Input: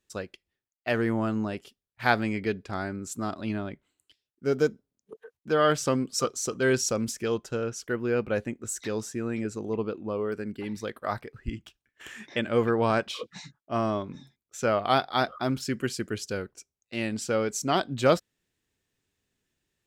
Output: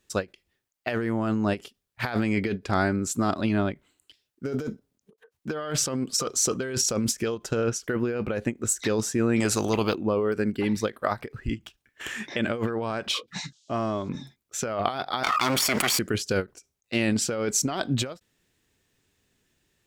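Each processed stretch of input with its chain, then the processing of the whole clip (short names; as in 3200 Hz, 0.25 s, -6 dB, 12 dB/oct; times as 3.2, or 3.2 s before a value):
9.4–9.95 bell 2000 Hz -6.5 dB 2.2 oct + spectral compressor 2:1
13.43–14.08 gate -56 dBFS, range -20 dB + compressor 2.5:1, threshold -37 dBFS + band noise 3200–7500 Hz -73 dBFS
15.23–15.99 minimum comb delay 0.88 ms + HPF 1200 Hz 6 dB/oct + fast leveller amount 100%
whole clip: negative-ratio compressor -31 dBFS, ratio -1; ending taper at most 370 dB/s; gain +5.5 dB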